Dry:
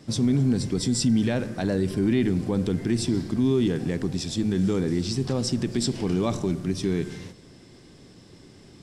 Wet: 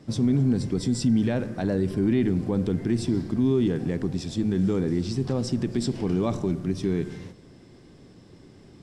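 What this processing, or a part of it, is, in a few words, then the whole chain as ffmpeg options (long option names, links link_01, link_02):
behind a face mask: -af "highshelf=frequency=2300:gain=-8"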